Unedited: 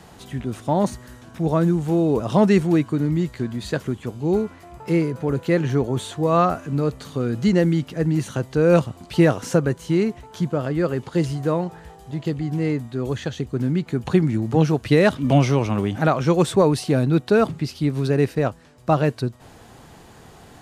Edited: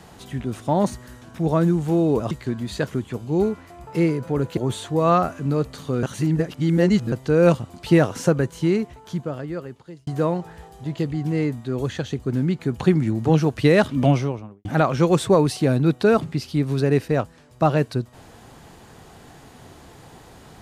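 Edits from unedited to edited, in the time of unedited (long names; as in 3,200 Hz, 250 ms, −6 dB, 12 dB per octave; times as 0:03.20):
0:02.31–0:03.24: remove
0:05.50–0:05.84: remove
0:07.30–0:08.39: reverse
0:09.91–0:11.34: fade out
0:15.20–0:15.92: fade out and dull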